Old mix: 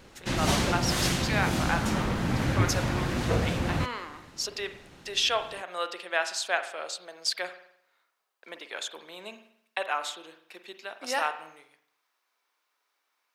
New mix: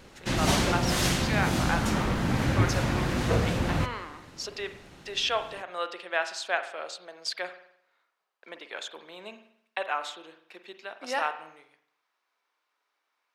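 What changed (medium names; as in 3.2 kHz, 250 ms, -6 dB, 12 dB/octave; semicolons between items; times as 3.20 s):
speech: add treble shelf 6.4 kHz -12 dB; background: send on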